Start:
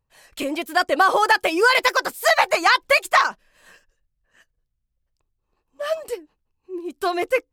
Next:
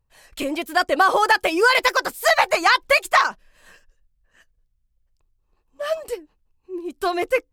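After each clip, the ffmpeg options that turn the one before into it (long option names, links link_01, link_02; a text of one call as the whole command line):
ffmpeg -i in.wav -af "lowshelf=frequency=67:gain=10" out.wav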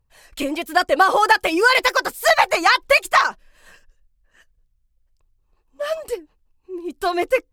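ffmpeg -i in.wav -af "aphaser=in_gain=1:out_gain=1:delay=4:decay=0.25:speed=1.3:type=triangular,volume=1dB" out.wav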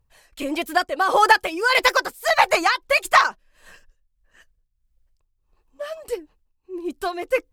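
ffmpeg -i in.wav -af "tremolo=f=1.6:d=0.69,volume=1dB" out.wav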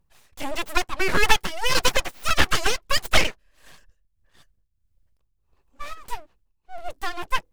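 ffmpeg -i in.wav -af "aeval=exprs='abs(val(0))':channel_layout=same" out.wav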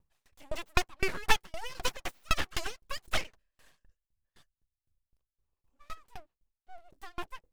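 ffmpeg -i in.wav -af "aeval=exprs='val(0)*pow(10,-30*if(lt(mod(3.9*n/s,1),2*abs(3.9)/1000),1-mod(3.9*n/s,1)/(2*abs(3.9)/1000),(mod(3.9*n/s,1)-2*abs(3.9)/1000)/(1-2*abs(3.9)/1000))/20)':channel_layout=same,volume=-3dB" out.wav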